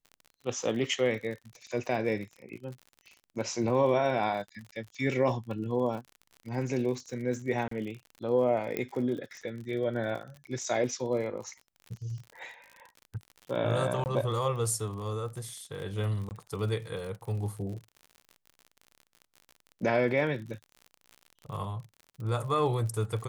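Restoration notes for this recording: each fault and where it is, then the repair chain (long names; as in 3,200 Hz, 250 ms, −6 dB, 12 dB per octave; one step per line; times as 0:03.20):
surface crackle 52 per second −39 dBFS
0:07.68–0:07.71: drop-out 34 ms
0:08.77: click −18 dBFS
0:14.04–0:14.06: drop-out 19 ms
0:16.29–0:16.31: drop-out 19 ms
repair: click removal
repair the gap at 0:07.68, 34 ms
repair the gap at 0:14.04, 19 ms
repair the gap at 0:16.29, 19 ms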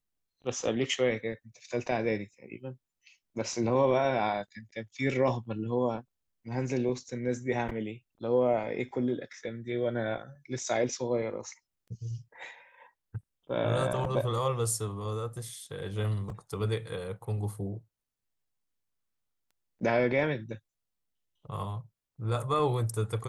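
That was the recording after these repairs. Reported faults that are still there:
none of them is left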